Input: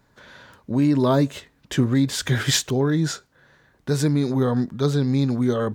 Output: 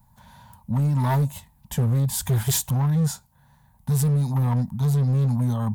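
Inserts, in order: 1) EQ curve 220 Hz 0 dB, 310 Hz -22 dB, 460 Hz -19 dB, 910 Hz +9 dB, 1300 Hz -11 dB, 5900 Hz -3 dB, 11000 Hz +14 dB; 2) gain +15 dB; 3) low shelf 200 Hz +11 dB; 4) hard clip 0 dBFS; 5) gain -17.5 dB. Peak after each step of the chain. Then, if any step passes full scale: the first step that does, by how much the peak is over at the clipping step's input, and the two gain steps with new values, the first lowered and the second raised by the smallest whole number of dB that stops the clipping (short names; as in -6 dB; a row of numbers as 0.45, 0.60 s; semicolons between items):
-7.5, +7.5, +9.5, 0.0, -17.5 dBFS; step 2, 9.5 dB; step 2 +5 dB, step 5 -7.5 dB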